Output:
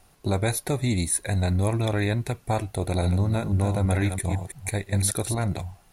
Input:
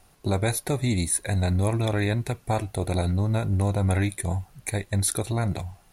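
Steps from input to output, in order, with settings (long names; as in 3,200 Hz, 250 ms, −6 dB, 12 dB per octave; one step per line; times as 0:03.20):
0:02.86–0:05.44: delay that plays each chunk backwards 166 ms, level −8 dB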